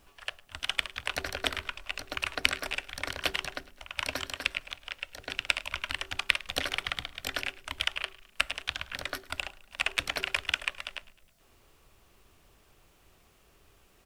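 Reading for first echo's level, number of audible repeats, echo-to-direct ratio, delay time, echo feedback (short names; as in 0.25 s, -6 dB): -21.0 dB, 3, -19.5 dB, 0.105 s, 54%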